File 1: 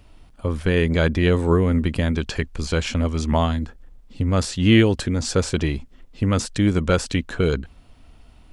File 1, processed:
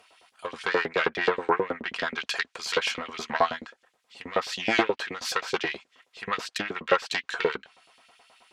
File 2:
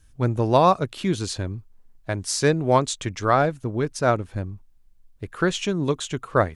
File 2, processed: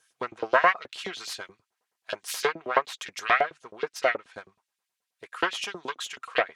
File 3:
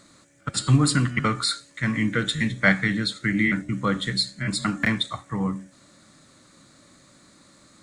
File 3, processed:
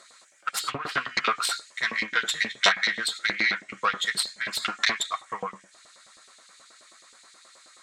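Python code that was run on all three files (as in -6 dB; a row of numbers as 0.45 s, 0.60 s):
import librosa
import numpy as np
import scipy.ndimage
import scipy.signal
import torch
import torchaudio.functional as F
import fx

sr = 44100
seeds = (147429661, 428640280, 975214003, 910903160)

y = fx.self_delay(x, sr, depth_ms=0.29)
y = fx.env_lowpass_down(y, sr, base_hz=2000.0, full_db=-14.5)
y = fx.notch_comb(y, sr, f0_hz=290.0)
y = fx.filter_lfo_highpass(y, sr, shape='saw_up', hz=9.4, low_hz=480.0, high_hz=3600.0, q=1.3)
y = y * 10.0 ** (-30 / 20.0) / np.sqrt(np.mean(np.square(y)))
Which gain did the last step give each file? +4.0 dB, +0.5 dB, +4.0 dB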